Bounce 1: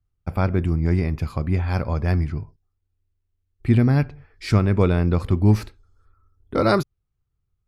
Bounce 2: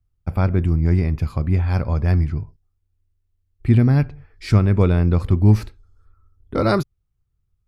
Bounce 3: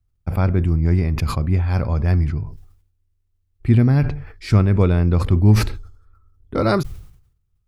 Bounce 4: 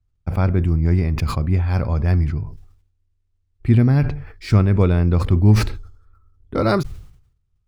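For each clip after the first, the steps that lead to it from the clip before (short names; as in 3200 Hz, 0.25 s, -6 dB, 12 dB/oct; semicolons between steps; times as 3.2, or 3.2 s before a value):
low shelf 160 Hz +6.5 dB; gain -1 dB
sustainer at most 82 dB/s
median filter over 3 samples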